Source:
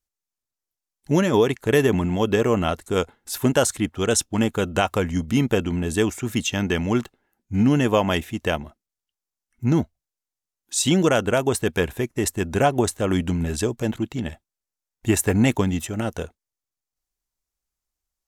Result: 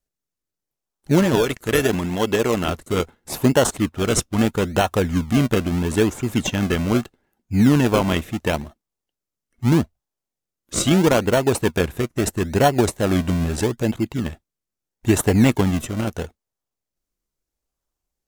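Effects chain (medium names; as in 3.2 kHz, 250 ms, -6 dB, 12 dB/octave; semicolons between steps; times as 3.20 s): 1.35–2.68 s: tilt EQ +2 dB/octave; in parallel at -3.5 dB: decimation with a swept rate 35×, swing 100% 0.77 Hz; on the sum: trim -1 dB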